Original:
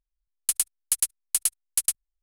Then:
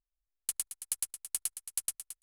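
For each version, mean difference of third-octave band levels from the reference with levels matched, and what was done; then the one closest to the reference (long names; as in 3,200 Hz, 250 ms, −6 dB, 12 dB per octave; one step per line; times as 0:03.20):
1.5 dB: adaptive Wiener filter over 15 samples
downward compressor, threshold −22 dBFS, peak gain reduction 4 dB
repeating echo 222 ms, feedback 20%, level −11 dB
level −6.5 dB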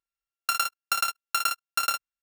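10.5 dB: samples sorted by size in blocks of 32 samples
high-pass filter 490 Hz 6 dB per octave
ambience of single reflections 27 ms −6.5 dB, 57 ms −5.5 dB
level −2 dB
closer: first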